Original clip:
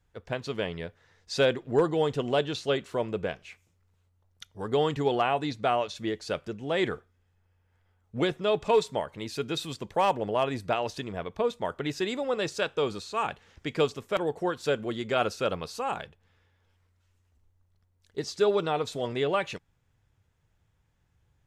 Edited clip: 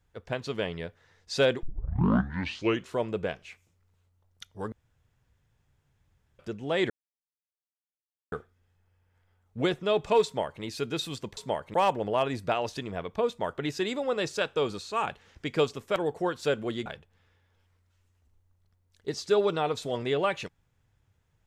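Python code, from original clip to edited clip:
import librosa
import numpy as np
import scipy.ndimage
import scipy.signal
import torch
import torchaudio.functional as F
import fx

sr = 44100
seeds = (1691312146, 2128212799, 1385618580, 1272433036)

y = fx.edit(x, sr, fx.tape_start(start_s=1.63, length_s=1.3),
    fx.room_tone_fill(start_s=4.72, length_s=1.67),
    fx.insert_silence(at_s=6.9, length_s=1.42),
    fx.duplicate(start_s=8.83, length_s=0.37, to_s=9.95),
    fx.cut(start_s=15.07, length_s=0.89), tone=tone)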